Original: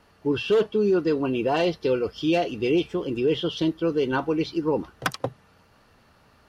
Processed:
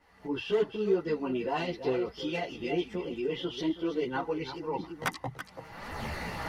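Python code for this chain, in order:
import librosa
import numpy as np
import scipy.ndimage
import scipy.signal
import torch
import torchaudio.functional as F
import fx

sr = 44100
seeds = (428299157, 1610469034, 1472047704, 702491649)

p1 = fx.recorder_agc(x, sr, target_db=-20.5, rise_db_per_s=38.0, max_gain_db=30)
p2 = fx.peak_eq(p1, sr, hz=2000.0, db=12.0, octaves=0.2)
p3 = p2 + fx.echo_single(p2, sr, ms=331, db=-11.5, dry=0)
p4 = fx.chorus_voices(p3, sr, voices=4, hz=0.64, base_ms=14, depth_ms=3.2, mix_pct=60)
p5 = fx.peak_eq(p4, sr, hz=860.0, db=6.5, octaves=0.5)
y = F.gain(torch.from_numpy(p5), -6.5).numpy()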